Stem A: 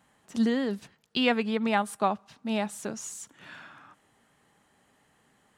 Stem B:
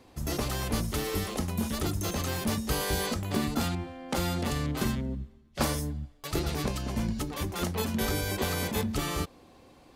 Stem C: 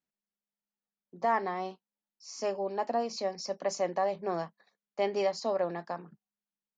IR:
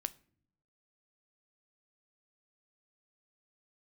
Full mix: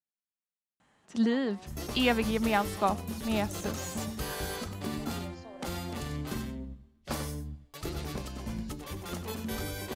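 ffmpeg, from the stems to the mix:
-filter_complex "[0:a]lowpass=7600,adelay=800,volume=0.841[s0];[1:a]adelay=1500,volume=0.447,asplit=2[s1][s2];[s2]volume=0.316[s3];[2:a]acompressor=threshold=0.0126:ratio=2,volume=0.224[s4];[s3]aecho=0:1:95:1[s5];[s0][s1][s4][s5]amix=inputs=4:normalize=0"

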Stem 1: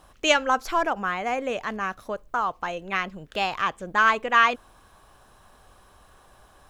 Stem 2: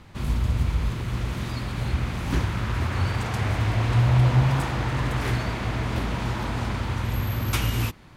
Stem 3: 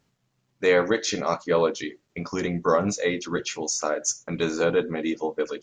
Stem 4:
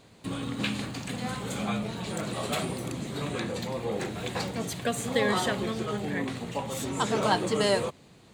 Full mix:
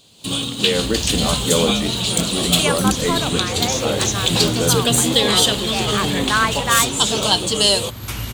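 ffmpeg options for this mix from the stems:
-filter_complex "[0:a]adelay=2350,volume=0.282[s0];[1:a]adelay=550,volume=0.178[s1];[2:a]equalizer=f=190:w=0.65:g=12,volume=0.224[s2];[3:a]highshelf=f=2500:t=q:w=3:g=7,volume=0.75[s3];[s0][s1][s2][s3]amix=inputs=4:normalize=0,highshelf=f=5000:g=7.5,dynaudnorm=f=170:g=3:m=4.22"

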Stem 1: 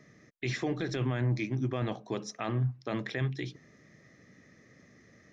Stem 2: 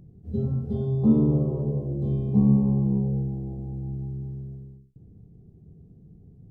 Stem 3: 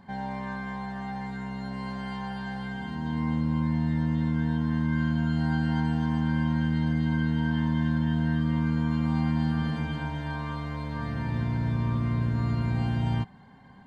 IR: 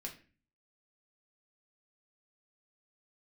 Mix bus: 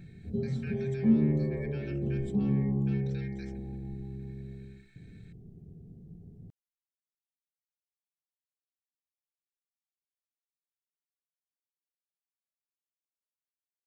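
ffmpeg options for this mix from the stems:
-filter_complex "[0:a]aecho=1:1:4.5:0.81,aeval=exprs='val(0)*sin(2*PI*2000*n/s)':c=same,volume=0.422[s0];[1:a]volume=0.75,asplit=2[s1][s2];[s2]volume=0.668[s3];[s0][s1]amix=inputs=2:normalize=0,equalizer=f=1100:w=5.5:g=-14,acompressor=threshold=0.0112:ratio=3,volume=1[s4];[3:a]atrim=start_sample=2205[s5];[s3][s5]afir=irnorm=-1:irlink=0[s6];[s4][s6]amix=inputs=2:normalize=0"

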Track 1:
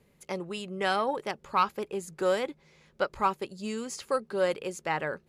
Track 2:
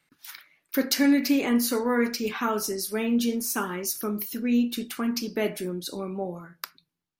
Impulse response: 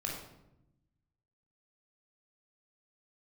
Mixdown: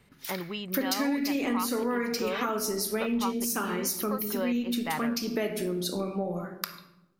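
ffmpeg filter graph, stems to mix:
-filter_complex "[0:a]lowpass=f=4300:w=0.5412,lowpass=f=4300:w=1.3066,aecho=1:1:1:0.35,volume=1.12[s0];[1:a]volume=1.19,asplit=2[s1][s2];[s2]volume=0.501[s3];[2:a]atrim=start_sample=2205[s4];[s3][s4]afir=irnorm=-1:irlink=0[s5];[s0][s1][s5]amix=inputs=3:normalize=0,acompressor=threshold=0.0447:ratio=4"

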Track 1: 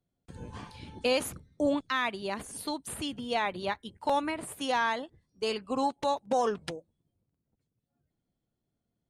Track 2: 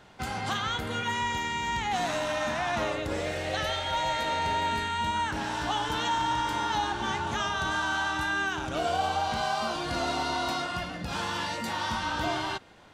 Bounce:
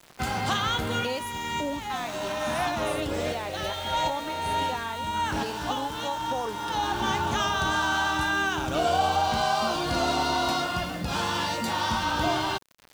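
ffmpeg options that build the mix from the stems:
-filter_complex "[0:a]volume=0.266,asplit=2[s0][s1];[1:a]acompressor=mode=upward:threshold=0.00447:ratio=2.5,acrusher=bits=9:mix=0:aa=0.000001,volume=0.794[s2];[s1]apad=whole_len=570614[s3];[s2][s3]sidechaincompress=threshold=0.00501:ratio=8:attack=50:release=567[s4];[s0][s4]amix=inputs=2:normalize=0,adynamicequalizer=threshold=0.00316:dfrequency=1900:dqfactor=2.1:tfrequency=1900:tqfactor=2.1:attack=5:release=100:ratio=0.375:range=2:mode=cutabove:tftype=bell,acontrast=71,aeval=exprs='val(0)*gte(abs(val(0)),0.00944)':c=same"

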